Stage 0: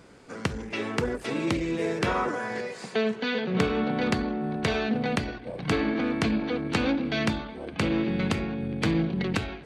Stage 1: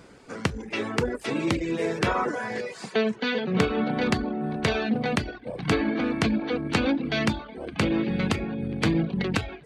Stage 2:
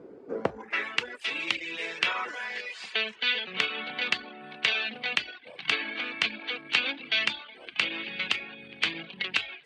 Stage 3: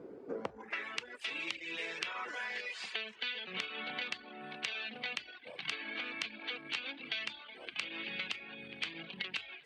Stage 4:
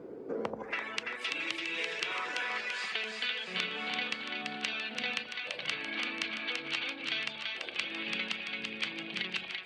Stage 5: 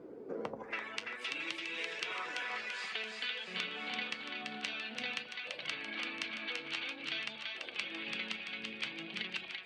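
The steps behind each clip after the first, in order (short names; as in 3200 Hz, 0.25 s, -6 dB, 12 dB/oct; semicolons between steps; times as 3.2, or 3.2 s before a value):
reverb removal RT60 0.53 s; gain +2.5 dB
band-pass sweep 390 Hz -> 2900 Hz, 0.32–0.92; gain +8.5 dB
compressor 6:1, threshold -34 dBFS, peak gain reduction 14.5 dB; gain -2 dB
split-band echo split 910 Hz, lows 82 ms, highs 0.337 s, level -3.5 dB; gain +3 dB
flange 0.53 Hz, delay 2.7 ms, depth 7.9 ms, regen +71%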